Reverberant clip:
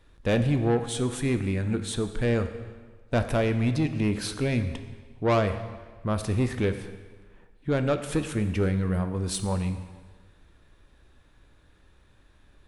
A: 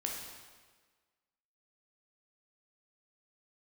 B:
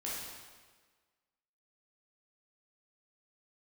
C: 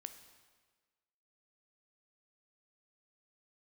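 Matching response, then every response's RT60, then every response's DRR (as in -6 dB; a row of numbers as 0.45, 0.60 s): C; 1.5, 1.5, 1.4 s; -1.0, -7.0, 8.5 dB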